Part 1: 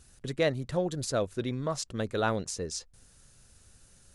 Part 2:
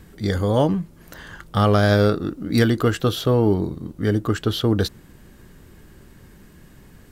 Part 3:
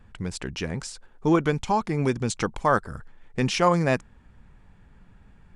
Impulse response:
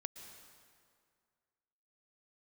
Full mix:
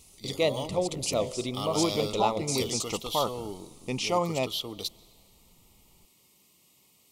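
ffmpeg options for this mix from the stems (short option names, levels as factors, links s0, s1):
-filter_complex "[0:a]bandreject=f=56.17:t=h:w=4,bandreject=f=112.34:t=h:w=4,bandreject=f=168.51:t=h:w=4,bandreject=f=224.68:t=h:w=4,bandreject=f=280.85:t=h:w=4,bandreject=f=337.02:t=h:w=4,bandreject=f=393.19:t=h:w=4,bandreject=f=449.36:t=h:w=4,bandreject=f=505.53:t=h:w=4,bandreject=f=561.7:t=h:w=4,bandreject=f=617.87:t=h:w=4,bandreject=f=674.04:t=h:w=4,volume=1.33,asplit=2[s0][s1];[s1]volume=0.422[s2];[1:a]highpass=110,tiltshelf=f=1400:g=-7.5,volume=0.299,asplit=2[s3][s4];[s4]volume=0.251[s5];[2:a]bandreject=f=1100:w=12,adelay=500,volume=0.668,asplit=2[s6][s7];[s7]volume=0.15[s8];[3:a]atrim=start_sample=2205[s9];[s2][s5][s8]amix=inputs=3:normalize=0[s10];[s10][s9]afir=irnorm=-1:irlink=0[s11];[s0][s3][s6][s11]amix=inputs=4:normalize=0,asuperstop=centerf=1600:order=4:qfactor=1.5,lowshelf=f=340:g=-8.5"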